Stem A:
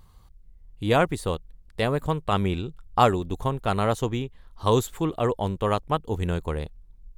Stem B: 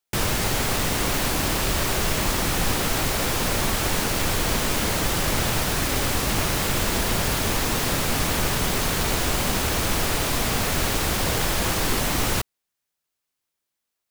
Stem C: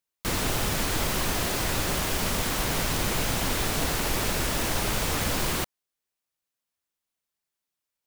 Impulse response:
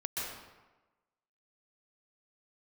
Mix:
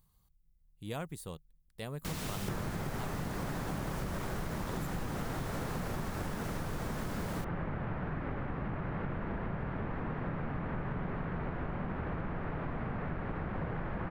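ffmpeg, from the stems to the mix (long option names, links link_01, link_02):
-filter_complex "[0:a]aemphasis=mode=production:type=50fm,volume=-18.5dB[link_01];[1:a]lowpass=frequency=1800:width=0.5412,lowpass=frequency=1800:width=1.3066,adelay=2350,volume=-4dB[link_02];[2:a]adelay=1800,volume=-10.5dB[link_03];[link_01][link_02][link_03]amix=inputs=3:normalize=0,equalizer=frequency=160:width_type=o:width=0.86:gain=8,acompressor=threshold=-33dB:ratio=10"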